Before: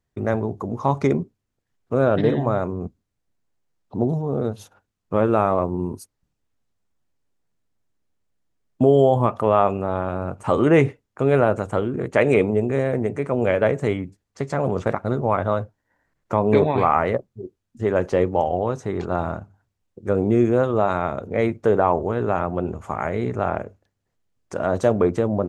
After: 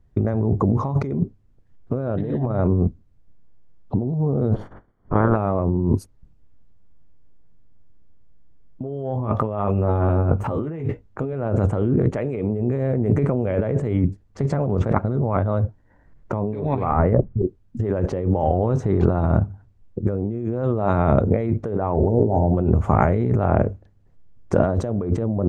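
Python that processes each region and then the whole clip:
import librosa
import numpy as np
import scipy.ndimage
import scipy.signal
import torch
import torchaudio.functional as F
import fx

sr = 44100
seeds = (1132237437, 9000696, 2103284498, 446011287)

y = fx.spec_clip(x, sr, under_db=22, at=(4.53, 5.35), fade=0.02)
y = fx.savgol(y, sr, points=41, at=(4.53, 5.35), fade=0.02)
y = fx.over_compress(y, sr, threshold_db=-23.0, ratio=-0.5, at=(4.53, 5.35), fade=0.02)
y = fx.chain(y, sr, fx.doubler(ms=19.0, db=-7.0),
    fx.resample_linear(factor=2), at=(9.13, 11.33))
y = fx.chain(y, sr, fx.cheby1_lowpass(hz=1800.0, order=2),
    fx.tilt_eq(slope=-1.5),
    fx.over_compress(threshold_db=-26.0, ratio=-1.0), at=(16.91, 17.42))
y = fx.chain(y, sr, fx.brickwall_bandstop(low_hz=950.0, high_hz=4100.0),
    fx.hum_notches(base_hz=60, count=10), at=(21.94, 22.54))
y = fx.tilt_eq(y, sr, slope=-3.5)
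y = fx.over_compress(y, sr, threshold_db=-22.0, ratio=-1.0)
y = F.gain(torch.from_numpy(y), 1.0).numpy()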